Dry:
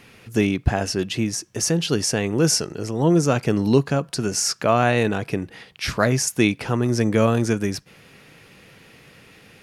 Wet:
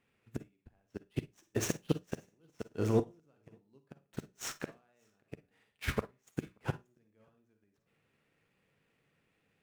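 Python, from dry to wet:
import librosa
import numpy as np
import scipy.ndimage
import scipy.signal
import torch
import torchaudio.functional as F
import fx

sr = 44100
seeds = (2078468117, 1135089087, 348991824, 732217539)

y = scipy.ndimage.median_filter(x, 9, mode='constant')
y = fx.notch_comb(y, sr, f0_hz=170.0, at=(5.23, 6.1))
y = fx.gate_flip(y, sr, shuts_db=-14.0, range_db=-26)
y = fx.hum_notches(y, sr, base_hz=60, count=3)
y = y + 10.0 ** (-17.5 / 20.0) * np.pad(y, (int(582 * sr / 1000.0), 0))[:len(y)]
y = fx.rev_schroeder(y, sr, rt60_s=0.37, comb_ms=38, drr_db=5.5)
y = 10.0 ** (-12.5 / 20.0) * np.tanh(y / 10.0 ** (-12.5 / 20.0))
y = fx.upward_expand(y, sr, threshold_db=-43.0, expansion=2.5)
y = F.gain(torch.from_numpy(y), 1.5).numpy()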